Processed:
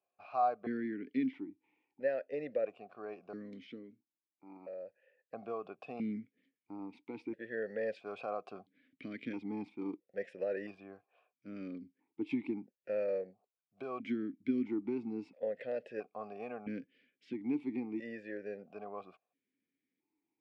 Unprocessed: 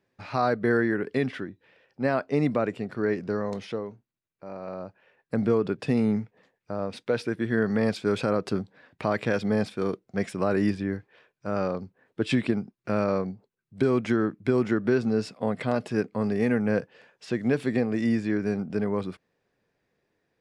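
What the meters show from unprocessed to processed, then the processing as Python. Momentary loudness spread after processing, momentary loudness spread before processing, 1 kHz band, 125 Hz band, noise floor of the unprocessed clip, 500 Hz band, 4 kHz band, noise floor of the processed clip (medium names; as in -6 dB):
15 LU, 13 LU, -8.0 dB, -23.5 dB, -81 dBFS, -12.0 dB, -20.0 dB, under -85 dBFS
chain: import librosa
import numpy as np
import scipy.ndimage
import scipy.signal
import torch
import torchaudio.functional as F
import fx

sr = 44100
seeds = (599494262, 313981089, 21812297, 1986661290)

y = fx.vowel_held(x, sr, hz=1.5)
y = F.gain(torch.from_numpy(y), -1.5).numpy()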